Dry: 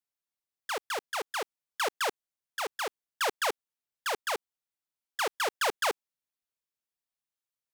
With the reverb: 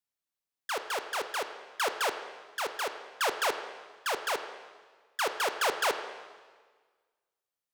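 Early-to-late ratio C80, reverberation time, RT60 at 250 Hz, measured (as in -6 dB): 10.0 dB, 1.5 s, 1.5 s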